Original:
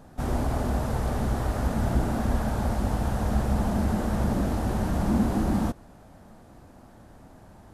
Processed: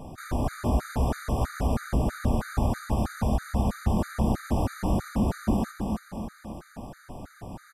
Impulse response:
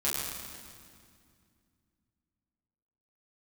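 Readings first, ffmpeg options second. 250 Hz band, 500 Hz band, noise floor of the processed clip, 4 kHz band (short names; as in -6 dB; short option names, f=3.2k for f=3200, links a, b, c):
-1.5 dB, -1.0 dB, -54 dBFS, -0.5 dB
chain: -af "acompressor=threshold=-31dB:ratio=6,aecho=1:1:275|550|825|1100|1375|1650:0.631|0.315|0.158|0.0789|0.0394|0.0197,afftfilt=real='re*gt(sin(2*PI*3.1*pts/sr)*(1-2*mod(floor(b*sr/1024/1200),2)),0)':imag='im*gt(sin(2*PI*3.1*pts/sr)*(1-2*mod(floor(b*sr/1024/1200),2)),0)':win_size=1024:overlap=0.75,volume=9dB"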